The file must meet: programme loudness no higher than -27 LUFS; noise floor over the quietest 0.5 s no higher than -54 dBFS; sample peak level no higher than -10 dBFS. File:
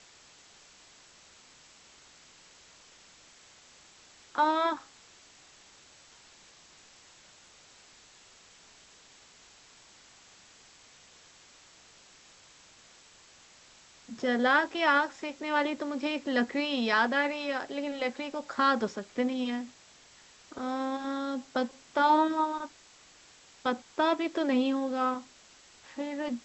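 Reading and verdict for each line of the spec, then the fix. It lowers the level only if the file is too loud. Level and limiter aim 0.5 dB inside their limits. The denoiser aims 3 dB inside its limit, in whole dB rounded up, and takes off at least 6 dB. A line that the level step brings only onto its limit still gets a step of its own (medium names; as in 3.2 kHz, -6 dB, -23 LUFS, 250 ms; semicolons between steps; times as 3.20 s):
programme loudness -29.5 LUFS: pass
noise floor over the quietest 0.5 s -57 dBFS: pass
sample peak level -12.5 dBFS: pass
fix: none needed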